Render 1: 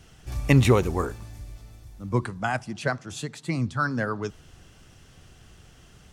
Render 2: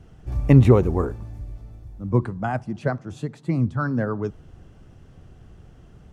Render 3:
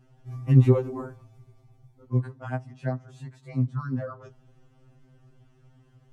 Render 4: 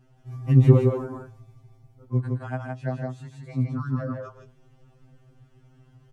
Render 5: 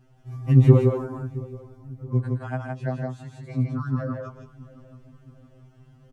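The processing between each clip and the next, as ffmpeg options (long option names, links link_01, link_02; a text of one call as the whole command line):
ffmpeg -i in.wav -af "tiltshelf=frequency=1500:gain=9.5,volume=-4dB" out.wav
ffmpeg -i in.wav -af "afftfilt=real='re*2.45*eq(mod(b,6),0)':imag='im*2.45*eq(mod(b,6),0)':win_size=2048:overlap=0.75,volume=-6.5dB" out.wav
ffmpeg -i in.wav -af "aecho=1:1:119.5|163.3:0.282|0.708" out.wav
ffmpeg -i in.wav -filter_complex "[0:a]asplit=2[link_01][link_02];[link_02]adelay=671,lowpass=frequency=1100:poles=1,volume=-18.5dB,asplit=2[link_03][link_04];[link_04]adelay=671,lowpass=frequency=1100:poles=1,volume=0.54,asplit=2[link_05][link_06];[link_06]adelay=671,lowpass=frequency=1100:poles=1,volume=0.54,asplit=2[link_07][link_08];[link_08]adelay=671,lowpass=frequency=1100:poles=1,volume=0.54,asplit=2[link_09][link_10];[link_10]adelay=671,lowpass=frequency=1100:poles=1,volume=0.54[link_11];[link_01][link_03][link_05][link_07][link_09][link_11]amix=inputs=6:normalize=0,volume=1dB" out.wav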